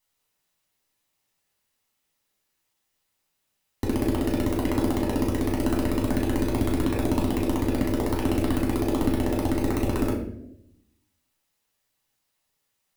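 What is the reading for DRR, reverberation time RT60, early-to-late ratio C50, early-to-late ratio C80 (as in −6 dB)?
−2.5 dB, non-exponential decay, 5.5 dB, 8.5 dB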